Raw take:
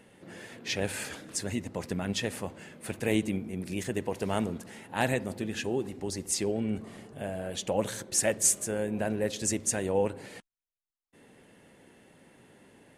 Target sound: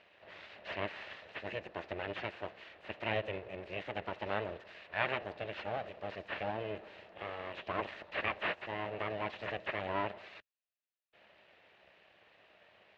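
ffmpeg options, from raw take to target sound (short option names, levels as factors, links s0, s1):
-filter_complex "[0:a]aeval=exprs='abs(val(0))':c=same,acrossover=split=3000[s0][s1];[s1]acompressor=threshold=0.00251:ratio=4:attack=1:release=60[s2];[s0][s2]amix=inputs=2:normalize=0,highpass=110,equalizer=f=140:t=q:w=4:g=-10,equalizer=f=260:t=q:w=4:g=-8,equalizer=f=610:t=q:w=4:g=8,equalizer=f=1800:t=q:w=4:g=8,equalizer=f=2700:t=q:w=4:g=9,equalizer=f=3900:t=q:w=4:g=3,lowpass=f=4400:w=0.5412,lowpass=f=4400:w=1.3066,volume=0.562"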